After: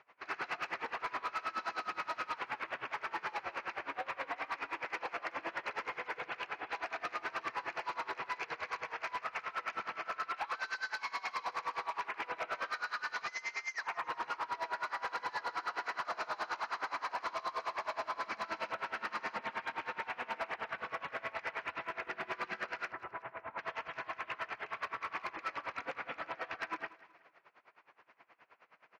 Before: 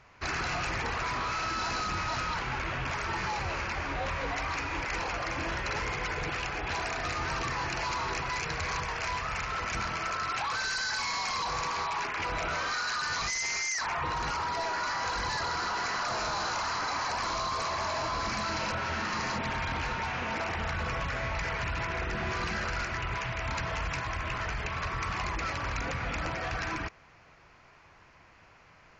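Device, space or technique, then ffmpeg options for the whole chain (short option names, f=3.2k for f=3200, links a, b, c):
helicopter radio: -filter_complex "[0:a]asettb=1/sr,asplit=3[a][b][c];[a]atrim=end=22.914[d];[b]atrim=start=22.91:end=23.59,asetpts=PTS-STARTPTS,afade=t=in:d=0.004:c=qsin,afade=t=out:st=0.676:d=0.004:c=qsin,lowpass=1.3k[e];[c]atrim=start=23.586[f];[d][e]acrossfade=d=0.004:c1=hsin:c2=qsin[g];[g][f]acrossfade=d=0.004:c1=qsin:c2=hsin,highpass=400,lowpass=2.9k,aeval=exprs='val(0)*pow(10,-24*(0.5-0.5*cos(2*PI*9.5*n/s))/20)':c=same,asoftclip=type=hard:threshold=-30dB,aecho=1:1:186|372|558:0.112|0.0415|0.0154"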